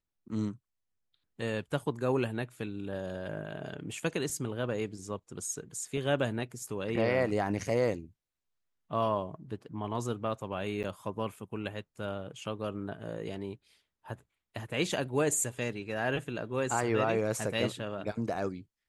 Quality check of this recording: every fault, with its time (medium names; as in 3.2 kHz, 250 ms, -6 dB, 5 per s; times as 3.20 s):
10.83–10.84 s: dropout 8.7 ms